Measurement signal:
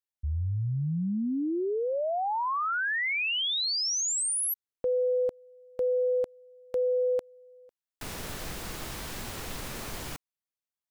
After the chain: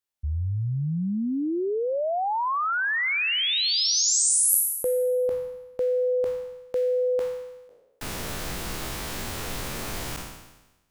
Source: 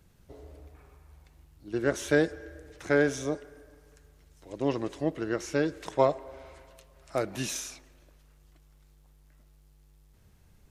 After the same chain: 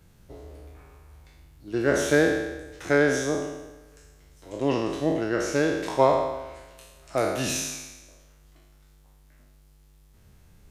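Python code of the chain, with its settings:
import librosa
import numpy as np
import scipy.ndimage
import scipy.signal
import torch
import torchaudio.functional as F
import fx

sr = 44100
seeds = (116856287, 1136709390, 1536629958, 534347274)

y = fx.spec_trails(x, sr, decay_s=1.07)
y = F.gain(torch.from_numpy(y), 2.5).numpy()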